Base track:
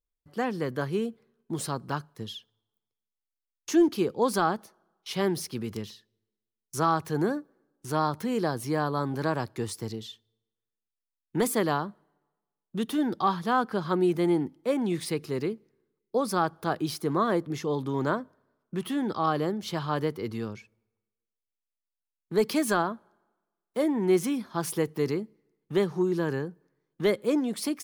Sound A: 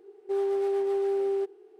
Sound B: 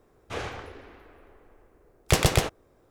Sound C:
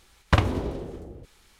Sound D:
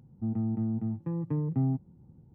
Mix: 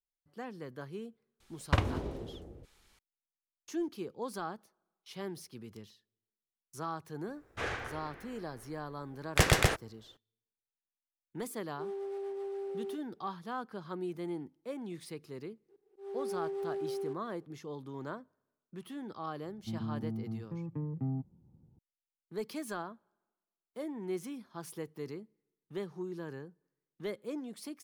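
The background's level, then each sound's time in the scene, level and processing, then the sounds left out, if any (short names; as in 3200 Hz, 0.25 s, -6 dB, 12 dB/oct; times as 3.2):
base track -14 dB
1.4 add C -8 dB
7.27 add B -4.5 dB + bell 1700 Hz +7.5 dB 0.75 oct
11.5 add A -12 dB
15.68 add A -10 dB, fades 0.02 s + auto swell 0.252 s
19.45 add D -7.5 dB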